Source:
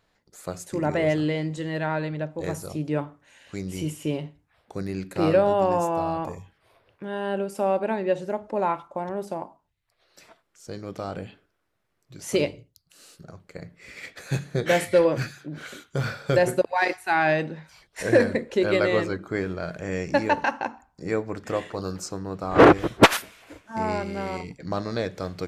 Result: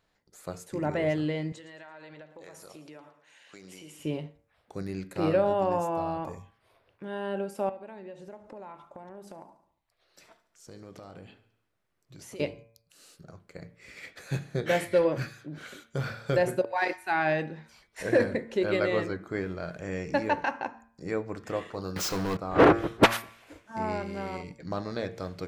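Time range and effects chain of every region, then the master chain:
0:01.52–0:04.00: meter weighting curve A + downward compressor 16 to 1, threshold −38 dBFS + repeating echo 112 ms, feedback 41%, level −14.5 dB
0:07.69–0:12.40: downward compressor 5 to 1, threshold −37 dBFS + repeating echo 71 ms, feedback 57%, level −17.5 dB
0:21.96–0:22.37: running median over 5 samples + tilt shelving filter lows −7 dB, about 850 Hz + leveller curve on the samples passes 5
whole clip: hum removal 114 Hz, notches 22; dynamic equaliser 7,300 Hz, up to −4 dB, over −47 dBFS, Q 0.81; level −4.5 dB

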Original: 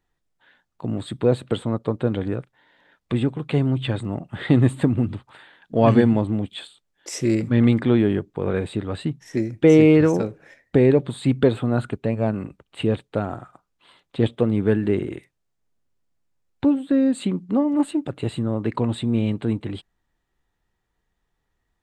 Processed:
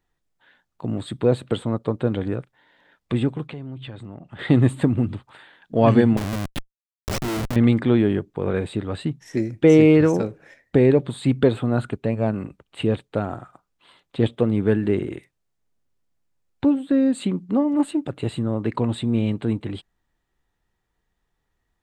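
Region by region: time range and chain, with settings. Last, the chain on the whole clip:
0:03.47–0:04.39: low-pass filter 6,200 Hz + downward compressor 3 to 1, threshold −36 dBFS
0:06.17–0:07.56: mu-law and A-law mismatch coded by A + comparator with hysteresis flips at −28 dBFS
whole clip: no processing

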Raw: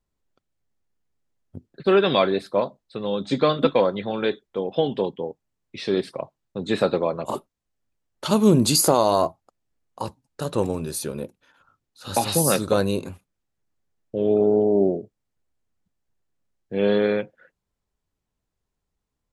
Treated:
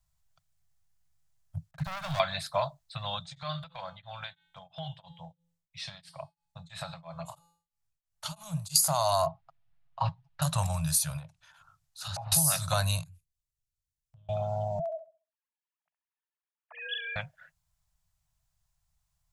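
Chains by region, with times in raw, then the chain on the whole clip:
0:01.71–0:02.20: head-to-tape spacing loss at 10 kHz 36 dB + downward compressor 4 to 1, threshold −35 dBFS + leveller curve on the samples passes 3
0:03.19–0:08.76: tuned comb filter 170 Hz, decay 0.54 s, harmonics odd + downward compressor 4 to 1, threshold −27 dBFS + tremolo along a rectified sine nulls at 3 Hz
0:09.26–0:10.42: low-pass filter 3,400 Hz 24 dB per octave + comb filter 7.3 ms, depth 82%
0:11.17–0:12.32: treble cut that deepens with the level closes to 760 Hz, closed at −21 dBFS + downward compressor 3 to 1, threshold −36 dBFS
0:13.03–0:14.29: guitar amp tone stack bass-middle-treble 10-0-1 + downward compressor 3 to 1, threshold −54 dBFS + one half of a high-frequency compander encoder only
0:14.79–0:17.16: three sine waves on the formant tracks + high-pass filter 550 Hz + flutter between parallel walls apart 11.5 metres, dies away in 0.35 s
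whole clip: Chebyshev band-stop filter 160–640 Hz, order 4; bass and treble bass +5 dB, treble +9 dB; downward compressor 6 to 1, threshold −22 dBFS

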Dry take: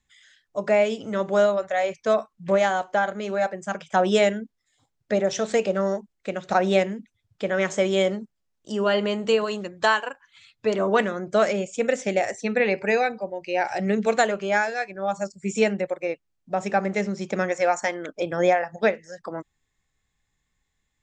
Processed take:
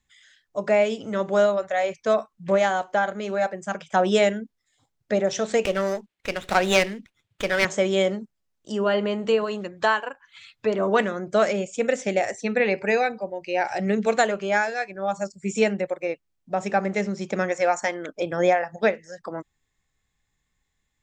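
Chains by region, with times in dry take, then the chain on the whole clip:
0:05.65–0:07.65: running median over 5 samples + meter weighting curve D + windowed peak hold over 5 samples
0:08.78–0:10.83: high-shelf EQ 3,600 Hz −9 dB + one half of a high-frequency compander encoder only
whole clip: no processing

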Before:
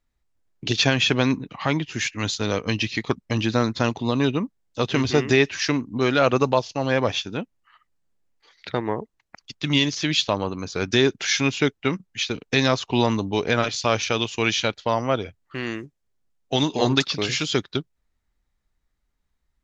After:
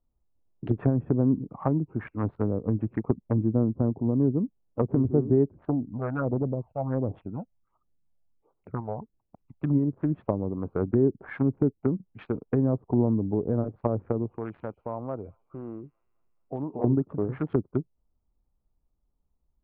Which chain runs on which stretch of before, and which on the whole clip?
0:05.51–0:09.62: all-pass phaser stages 12, 1.4 Hz, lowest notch 320–2,100 Hz + saturating transformer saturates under 840 Hz
0:14.38–0:16.84: downward compressor 1.5 to 1, threshold −43 dBFS + delay with a high-pass on its return 214 ms, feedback 59%, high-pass 3,300 Hz, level −10 dB
whole clip: adaptive Wiener filter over 25 samples; low-pass filter 1,400 Hz 24 dB per octave; treble cut that deepens with the level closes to 380 Hz, closed at −21 dBFS

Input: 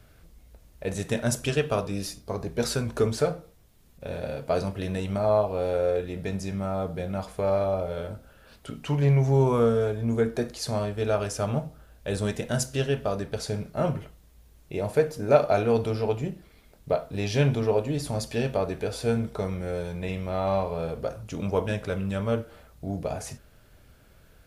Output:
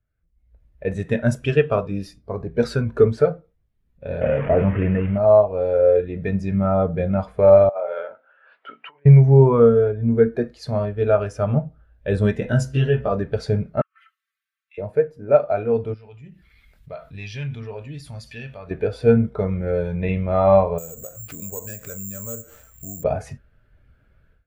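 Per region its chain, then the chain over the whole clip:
0:04.21–0:05.18: linear delta modulator 16 kbit/s, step −36 dBFS + envelope flattener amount 50%
0:07.69–0:09.06: compressor whose output falls as the input rises −29 dBFS, ratio −0.5 + band-pass filter 640–2,800 Hz
0:12.40–0:13.12: downward compressor 2.5 to 1, threshold −27 dBFS + double-tracking delay 16 ms −2 dB
0:13.81–0:14.78: linear-phase brick-wall high-pass 1,100 Hz + comb filter 4.5 ms, depth 69% + gate with flip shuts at −28 dBFS, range −32 dB
0:15.94–0:18.71: guitar amp tone stack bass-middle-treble 5-5-5 + gain into a clipping stage and back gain 34 dB + envelope flattener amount 50%
0:20.78–0:23.04: downward compressor 3 to 1, threshold −41 dBFS + high-shelf EQ 4,000 Hz +5.5 dB + bad sample-rate conversion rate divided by 6×, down none, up zero stuff
whole clip: drawn EQ curve 720 Hz 0 dB, 1,900 Hz +5 dB, 6,400 Hz −5 dB; automatic gain control gain up to 15 dB; every bin expanded away from the loudest bin 1.5 to 1; level −1 dB

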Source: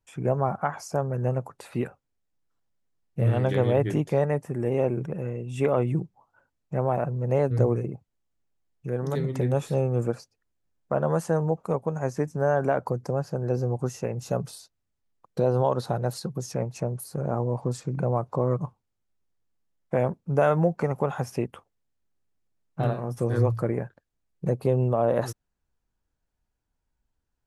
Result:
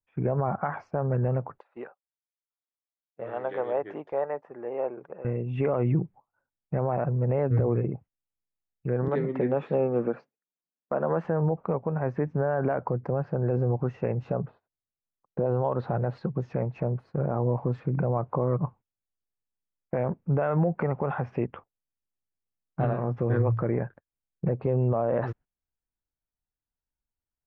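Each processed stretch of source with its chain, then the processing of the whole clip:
0:01.58–0:05.25: high-pass filter 720 Hz + parametric band 2,300 Hz −11.5 dB 1.3 octaves
0:09.08–0:11.25: high-pass filter 180 Hz 24 dB per octave + one half of a high-frequency compander decoder only
0:14.32–0:15.46: low-pass filter 1,400 Hz + low-shelf EQ 93 Hz −5 dB
whole clip: low-pass filter 2,400 Hz 24 dB per octave; noise gate −48 dBFS, range −17 dB; brickwall limiter −19 dBFS; level +3 dB

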